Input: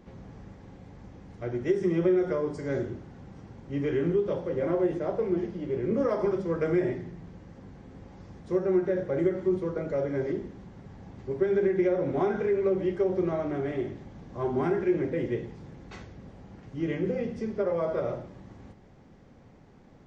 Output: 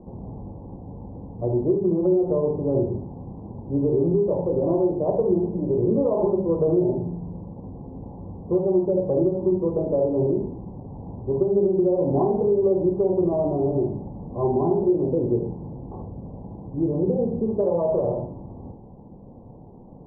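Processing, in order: steep low-pass 1 kHz 72 dB/octave; compression 4:1, threshold -27 dBFS, peak gain reduction 7 dB; gated-style reverb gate 90 ms rising, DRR 5 dB; trim +8.5 dB

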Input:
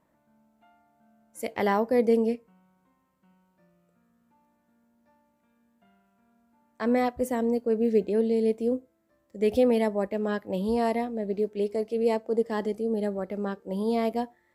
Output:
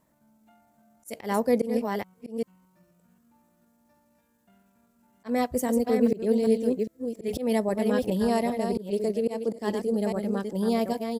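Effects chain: chunks repeated in reverse 526 ms, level -6 dB; tone controls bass +4 dB, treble +10 dB; tempo 1.3×; slow attack 166 ms

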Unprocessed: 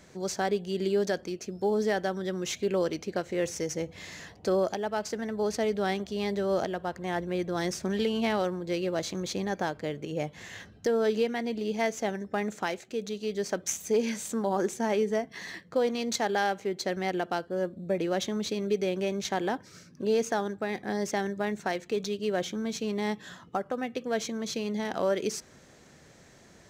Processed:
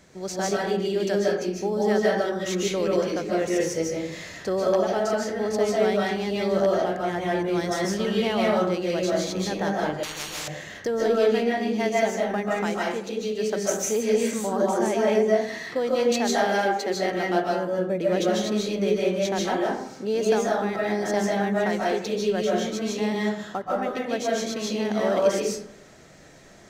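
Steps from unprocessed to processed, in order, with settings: 16.46–16.94 s: high-pass 230 Hz 24 dB/octave; reverberation RT60 0.70 s, pre-delay 110 ms, DRR -4.5 dB; 10.03–10.48 s: spectrum-flattening compressor 10:1

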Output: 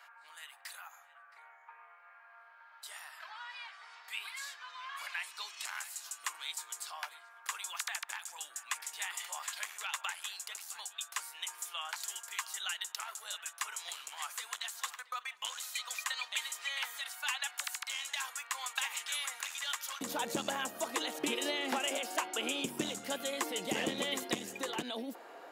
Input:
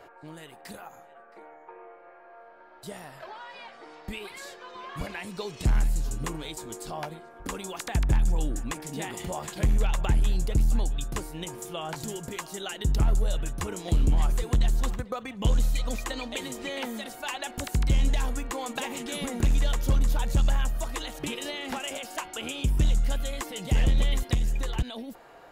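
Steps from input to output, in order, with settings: high-pass 1.1 kHz 24 dB/octave, from 20.01 s 250 Hz

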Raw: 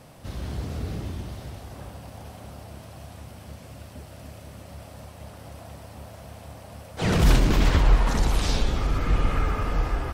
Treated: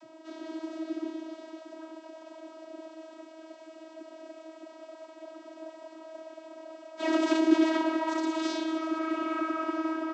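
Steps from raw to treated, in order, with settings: vocoder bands 32, saw 320 Hz

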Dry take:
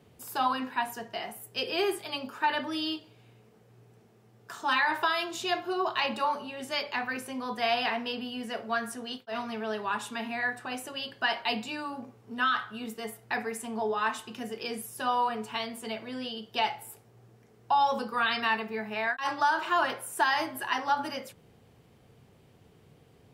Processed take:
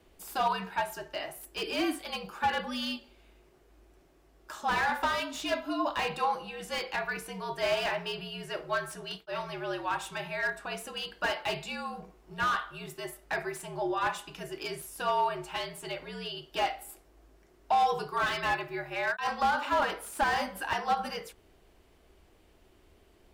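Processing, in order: frequency shift -67 Hz; peaking EQ 130 Hz -11 dB 1.2 oct; slew-rate limiter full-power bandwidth 78 Hz

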